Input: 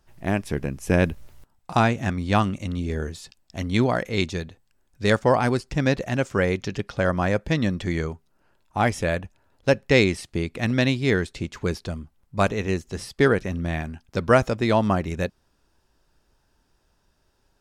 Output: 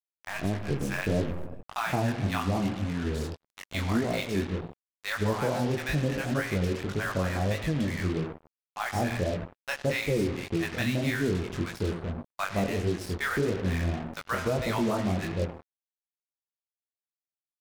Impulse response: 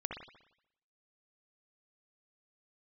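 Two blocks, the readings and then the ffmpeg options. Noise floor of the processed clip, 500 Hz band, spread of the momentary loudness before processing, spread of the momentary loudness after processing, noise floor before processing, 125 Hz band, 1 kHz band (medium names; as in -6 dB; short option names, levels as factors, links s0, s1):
under -85 dBFS, -7.0 dB, 12 LU, 8 LU, -68 dBFS, -4.5 dB, -7.0 dB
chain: -filter_complex "[0:a]highshelf=f=3700:g=-6,asplit=2[s0][s1];[1:a]atrim=start_sample=2205,adelay=21[s2];[s1][s2]afir=irnorm=-1:irlink=0,volume=0.398[s3];[s0][s3]amix=inputs=2:normalize=0,adynamicequalizer=threshold=0.0178:dfrequency=510:dqfactor=2.9:tfrequency=510:tqfactor=2.9:attack=5:release=100:ratio=0.375:range=2:mode=cutabove:tftype=bell,acrossover=split=850[s4][s5];[s4]adelay=170[s6];[s6][s5]amix=inputs=2:normalize=0,flanger=delay=18:depth=6.8:speed=1.7,alimiter=limit=0.126:level=0:latency=1:release=177,acrusher=bits=5:mix=0:aa=0.5"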